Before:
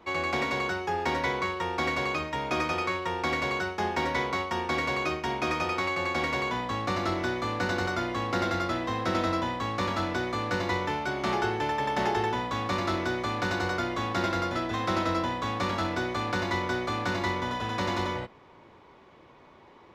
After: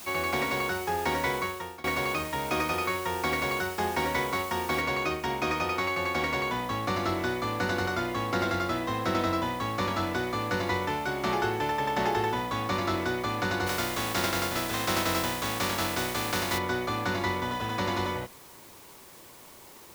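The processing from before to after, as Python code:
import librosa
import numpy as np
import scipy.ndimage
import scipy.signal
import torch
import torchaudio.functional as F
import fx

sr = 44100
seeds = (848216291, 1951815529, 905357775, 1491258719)

y = fx.noise_floor_step(x, sr, seeds[0], at_s=4.81, before_db=-44, after_db=-52, tilt_db=0.0)
y = fx.spec_flatten(y, sr, power=0.56, at=(13.66, 16.57), fade=0.02)
y = fx.edit(y, sr, fx.fade_out_to(start_s=1.36, length_s=0.48, floor_db=-23.5), tone=tone)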